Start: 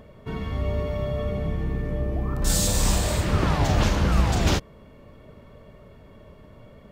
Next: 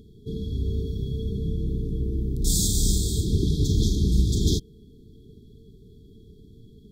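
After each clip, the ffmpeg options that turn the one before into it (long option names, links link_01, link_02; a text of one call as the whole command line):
ffmpeg -i in.wav -af "afftfilt=real='re*(1-between(b*sr/4096,460,3200))':imag='im*(1-between(b*sr/4096,460,3200))':win_size=4096:overlap=0.75" out.wav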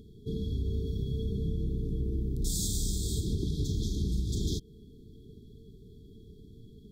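ffmpeg -i in.wav -af "acompressor=threshold=-25dB:ratio=6,volume=-2dB" out.wav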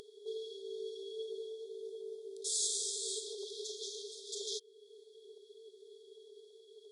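ffmpeg -i in.wav -af "acompressor=mode=upward:threshold=-39dB:ratio=2.5,afftfilt=real='re*between(b*sr/4096,380,11000)':imag='im*between(b*sr/4096,380,11000)':win_size=4096:overlap=0.75,volume=1dB" out.wav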